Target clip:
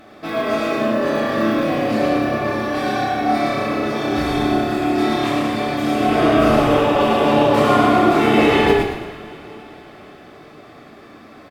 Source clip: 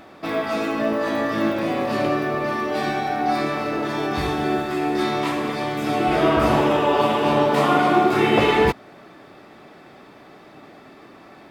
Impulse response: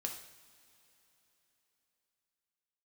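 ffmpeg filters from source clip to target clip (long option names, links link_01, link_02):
-filter_complex "[0:a]asuperstop=centerf=940:order=4:qfactor=7.8,asplit=6[link_01][link_02][link_03][link_04][link_05][link_06];[link_02]adelay=112,afreqshift=-33,volume=-3.5dB[link_07];[link_03]adelay=224,afreqshift=-66,volume=-11.5dB[link_08];[link_04]adelay=336,afreqshift=-99,volume=-19.4dB[link_09];[link_05]adelay=448,afreqshift=-132,volume=-27.4dB[link_10];[link_06]adelay=560,afreqshift=-165,volume=-35.3dB[link_11];[link_01][link_07][link_08][link_09][link_10][link_11]amix=inputs=6:normalize=0[link_12];[1:a]atrim=start_sample=2205,asetrate=38808,aresample=44100[link_13];[link_12][link_13]afir=irnorm=-1:irlink=0,volume=1dB"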